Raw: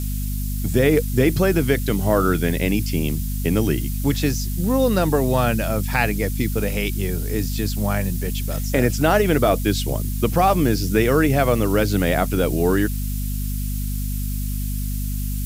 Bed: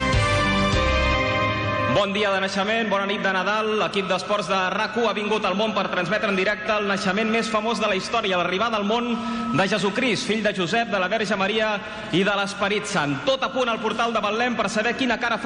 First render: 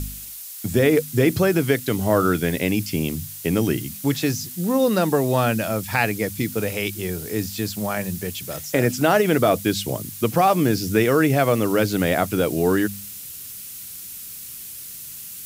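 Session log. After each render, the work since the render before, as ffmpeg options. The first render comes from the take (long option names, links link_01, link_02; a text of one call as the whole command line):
ffmpeg -i in.wav -af "bandreject=frequency=50:width_type=h:width=4,bandreject=frequency=100:width_type=h:width=4,bandreject=frequency=150:width_type=h:width=4,bandreject=frequency=200:width_type=h:width=4,bandreject=frequency=250:width_type=h:width=4" out.wav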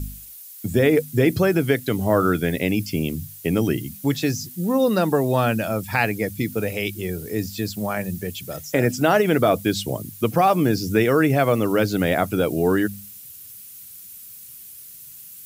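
ffmpeg -i in.wav -af "afftdn=noise_reduction=9:noise_floor=-37" out.wav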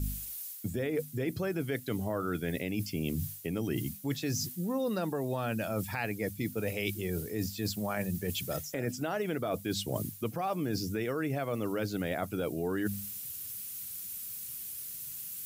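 ffmpeg -i in.wav -af "alimiter=limit=-12.5dB:level=0:latency=1:release=200,areverse,acompressor=threshold=-30dB:ratio=6,areverse" out.wav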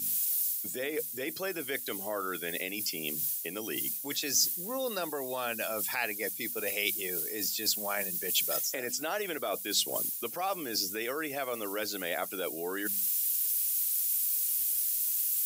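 ffmpeg -i in.wav -af "highpass=400,highshelf=frequency=2700:gain=11.5" out.wav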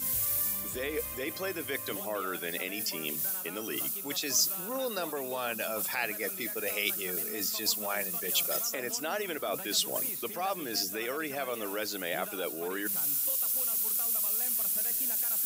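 ffmpeg -i in.wav -i bed.wav -filter_complex "[1:a]volume=-26dB[link_01];[0:a][link_01]amix=inputs=2:normalize=0" out.wav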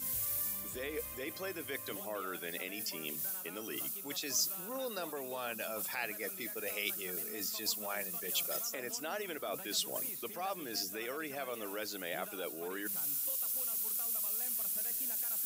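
ffmpeg -i in.wav -af "volume=-6dB" out.wav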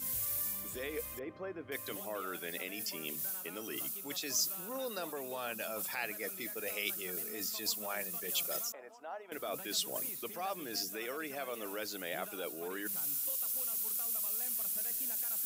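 ffmpeg -i in.wav -filter_complex "[0:a]asettb=1/sr,asplit=3[link_01][link_02][link_03];[link_01]atrim=end=1.194[link_04];[link_02]atrim=start=1.19:end=1.72,asetpts=PTS-STARTPTS,afade=type=in:duration=0.004:curve=qsin,afade=type=out:start_time=0.526:duration=0.004:curve=qsin,lowpass=1300[link_05];[link_03]atrim=start=1.716[link_06];[link_04][link_05]acrossfade=duration=0.004:curve1=hsin:curve2=qsin[link_07];[link_07][link_06]acrossfade=duration=0.004:curve1=qsin:curve2=hsin,asettb=1/sr,asplit=3[link_08][link_09][link_10];[link_08]atrim=end=8.724[link_11];[link_09]atrim=start=8.72:end=9.32,asetpts=PTS-STARTPTS,afade=type=in:duration=0.004:curve=qsin,afade=type=out:start_time=0.596:duration=0.004:curve=qsin,bandpass=frequency=830:width_type=q:width=2.2[link_12];[link_10]atrim=start=9.316[link_13];[link_11][link_12]acrossfade=duration=0.004:curve1=hsin:curve2=qsin[link_14];[link_14][link_13]acrossfade=duration=0.004:curve1=qsin:curve2=hsin,asettb=1/sr,asplit=3[link_15][link_16][link_17];[link_15]atrim=end=10.894[link_18];[link_16]atrim=start=10.89:end=11.66,asetpts=PTS-STARTPTS,afade=type=in:duration=0.004:curve=qsin,afade=type=out:start_time=0.766:duration=0.004:curve=qsin,highpass=140[link_19];[link_17]atrim=start=11.656[link_20];[link_18][link_19]acrossfade=duration=0.004:curve1=hsin:curve2=qsin[link_21];[link_21][link_20]acrossfade=duration=0.004:curve1=qsin:curve2=hsin" out.wav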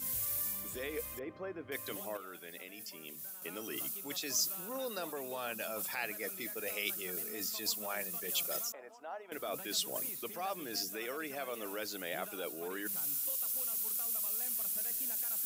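ffmpeg -i in.wav -filter_complex "[0:a]asplit=3[link_01][link_02][link_03];[link_01]atrim=end=2.172[link_04];[link_02]atrim=start=2.168:end=3.422,asetpts=PTS-STARTPTS,volume=-7.5dB[link_05];[link_03]atrim=start=3.418[link_06];[link_04][link_05]acrossfade=duration=0.004:curve1=hsin:curve2=hsin[link_07];[link_07][link_06]acrossfade=duration=0.004:curve1=hsin:curve2=hsin" out.wav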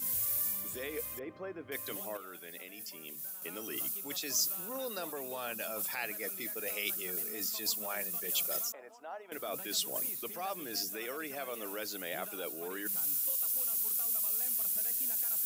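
ffmpeg -i in.wav -af "highpass=73,highshelf=frequency=9100:gain=4.5" out.wav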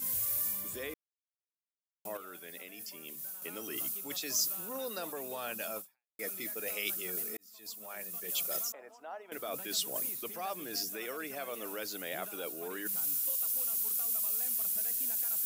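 ffmpeg -i in.wav -filter_complex "[0:a]asplit=5[link_01][link_02][link_03][link_04][link_05];[link_01]atrim=end=0.94,asetpts=PTS-STARTPTS,afade=type=out:start_time=0.936:duration=0.004:curve=hsin[link_06];[link_02]atrim=start=0.94:end=2.05,asetpts=PTS-STARTPTS,volume=0[link_07];[link_03]atrim=start=2.05:end=6.19,asetpts=PTS-STARTPTS,afade=type=in:duration=0.004:curve=hsin,afade=type=out:start_time=3.72:duration=0.42:curve=exp[link_08];[link_04]atrim=start=6.19:end=7.37,asetpts=PTS-STARTPTS,afade=type=in:duration=0.004:curve=hsin,afade=type=out:start_time=1.176:duration=0.004:curve=hsin[link_09];[link_05]atrim=start=7.37,asetpts=PTS-STARTPTS,afade=type=in:duration=1.22[link_10];[link_06][link_07][link_08][link_09][link_10]concat=n=5:v=0:a=1" out.wav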